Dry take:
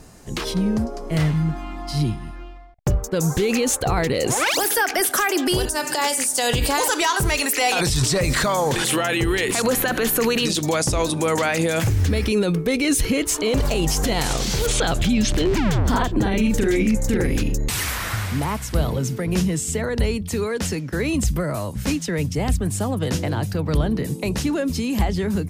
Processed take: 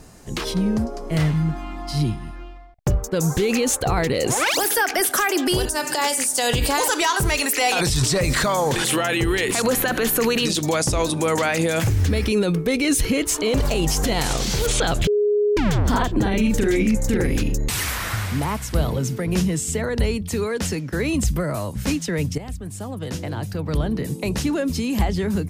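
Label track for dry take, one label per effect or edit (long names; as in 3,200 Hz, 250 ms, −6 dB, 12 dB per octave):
15.070000	15.570000	beep over 415 Hz −15.5 dBFS
22.380000	24.380000	fade in, from −13 dB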